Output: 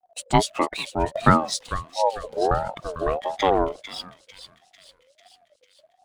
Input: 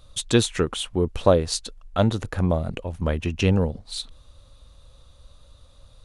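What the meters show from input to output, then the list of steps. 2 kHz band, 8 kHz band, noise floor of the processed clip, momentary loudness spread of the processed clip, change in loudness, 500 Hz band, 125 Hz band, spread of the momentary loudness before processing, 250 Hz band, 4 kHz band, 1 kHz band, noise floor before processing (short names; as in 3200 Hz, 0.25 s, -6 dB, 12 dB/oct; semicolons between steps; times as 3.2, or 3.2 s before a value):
+2.5 dB, -3.0 dB, -66 dBFS, 13 LU, 0.0 dB, -1.0 dB, -6.0 dB, 11 LU, -3.0 dB, -2.5 dB, +10.0 dB, -53 dBFS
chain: spectral repair 1.92–2.43, 240–2400 Hz both; backlash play -38.5 dBFS; thinning echo 0.447 s, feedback 64%, high-pass 950 Hz, level -5.5 dB; spectral noise reduction 10 dB; ring modulator with a swept carrier 620 Hz, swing 20%, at 1.5 Hz; gain +3.5 dB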